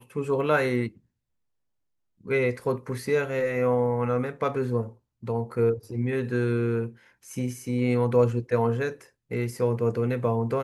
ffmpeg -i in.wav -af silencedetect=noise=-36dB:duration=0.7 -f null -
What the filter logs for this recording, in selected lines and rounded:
silence_start: 0.88
silence_end: 2.26 | silence_duration: 1.37